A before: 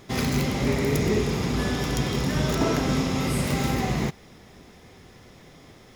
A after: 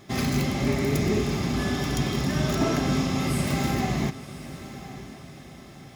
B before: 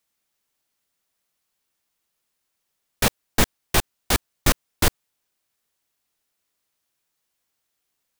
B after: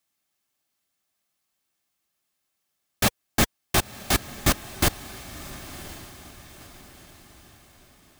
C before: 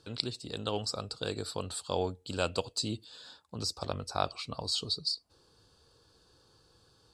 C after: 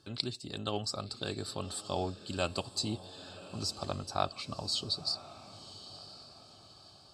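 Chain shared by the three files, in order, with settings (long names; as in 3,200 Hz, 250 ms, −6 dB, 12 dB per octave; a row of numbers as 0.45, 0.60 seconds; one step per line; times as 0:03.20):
notch comb filter 480 Hz
feedback delay with all-pass diffusion 1,027 ms, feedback 44%, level −14.5 dB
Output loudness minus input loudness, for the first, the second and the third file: −0.5, −1.0, −1.5 LU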